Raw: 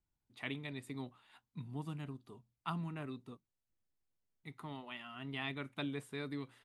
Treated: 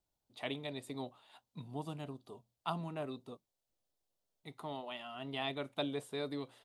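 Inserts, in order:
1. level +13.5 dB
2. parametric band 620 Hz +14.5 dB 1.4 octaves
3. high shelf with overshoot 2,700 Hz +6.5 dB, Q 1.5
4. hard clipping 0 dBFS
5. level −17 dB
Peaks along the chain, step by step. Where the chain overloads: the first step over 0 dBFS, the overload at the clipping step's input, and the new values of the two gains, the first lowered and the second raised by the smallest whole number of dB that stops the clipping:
−10.5, −5.5, −5.0, −5.0, −22.0 dBFS
no step passes full scale

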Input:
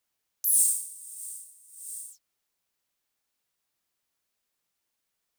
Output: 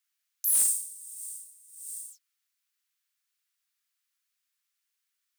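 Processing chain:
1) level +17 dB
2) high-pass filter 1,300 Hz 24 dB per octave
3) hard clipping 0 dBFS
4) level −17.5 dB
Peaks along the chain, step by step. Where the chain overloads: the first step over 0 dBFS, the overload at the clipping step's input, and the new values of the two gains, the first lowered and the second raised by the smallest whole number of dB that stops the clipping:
+8.0, +8.0, 0.0, −17.5 dBFS
step 1, 8.0 dB
step 1 +9 dB, step 4 −9.5 dB

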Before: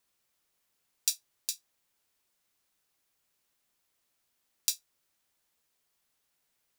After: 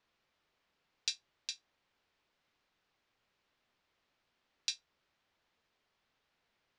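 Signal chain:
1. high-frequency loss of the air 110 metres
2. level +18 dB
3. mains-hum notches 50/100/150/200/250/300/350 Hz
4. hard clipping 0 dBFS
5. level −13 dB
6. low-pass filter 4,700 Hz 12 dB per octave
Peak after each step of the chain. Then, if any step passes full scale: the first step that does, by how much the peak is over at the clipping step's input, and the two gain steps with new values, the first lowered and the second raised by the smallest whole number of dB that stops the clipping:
−14.5, +3.5, +3.5, 0.0, −13.0, −16.0 dBFS
step 2, 3.5 dB
step 2 +14 dB, step 5 −9 dB

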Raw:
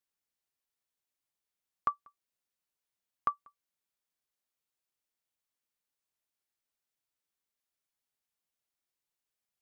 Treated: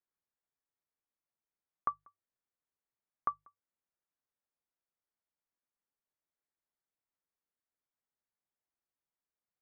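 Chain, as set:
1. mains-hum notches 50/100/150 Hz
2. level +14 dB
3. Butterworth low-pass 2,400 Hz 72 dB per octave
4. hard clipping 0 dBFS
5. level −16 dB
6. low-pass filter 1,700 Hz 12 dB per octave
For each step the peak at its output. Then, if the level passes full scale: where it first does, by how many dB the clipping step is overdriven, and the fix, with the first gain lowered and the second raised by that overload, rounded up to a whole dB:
−17.5, −3.5, −3.0, −3.0, −19.0, −20.0 dBFS
no step passes full scale

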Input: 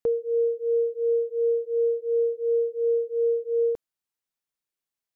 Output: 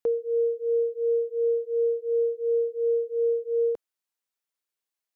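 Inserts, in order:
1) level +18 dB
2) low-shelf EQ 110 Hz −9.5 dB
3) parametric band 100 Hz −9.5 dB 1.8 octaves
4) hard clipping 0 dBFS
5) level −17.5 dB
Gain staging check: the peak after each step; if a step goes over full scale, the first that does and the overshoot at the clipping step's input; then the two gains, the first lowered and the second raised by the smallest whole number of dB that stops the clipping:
−0.5, −0.5, −1.5, −1.5, −19.0 dBFS
no step passes full scale

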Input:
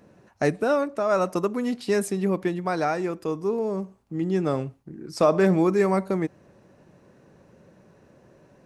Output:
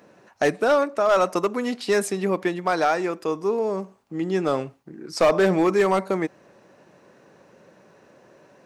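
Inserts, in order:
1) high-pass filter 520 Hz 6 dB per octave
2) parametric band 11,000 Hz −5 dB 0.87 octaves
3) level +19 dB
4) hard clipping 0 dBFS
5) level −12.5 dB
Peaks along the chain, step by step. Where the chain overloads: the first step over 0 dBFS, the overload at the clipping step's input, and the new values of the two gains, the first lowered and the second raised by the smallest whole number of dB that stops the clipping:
−10.0, −10.0, +9.0, 0.0, −12.5 dBFS
step 3, 9.0 dB
step 3 +10 dB, step 5 −3.5 dB

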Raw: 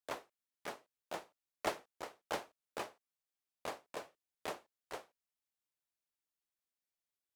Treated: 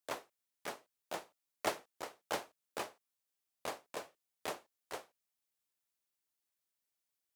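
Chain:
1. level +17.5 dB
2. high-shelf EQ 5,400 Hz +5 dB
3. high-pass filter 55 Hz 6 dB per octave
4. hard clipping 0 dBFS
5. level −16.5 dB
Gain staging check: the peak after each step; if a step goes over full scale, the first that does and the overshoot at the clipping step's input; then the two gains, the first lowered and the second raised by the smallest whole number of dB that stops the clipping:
−4.5, −4.0, −4.0, −4.0, −20.5 dBFS
no step passes full scale

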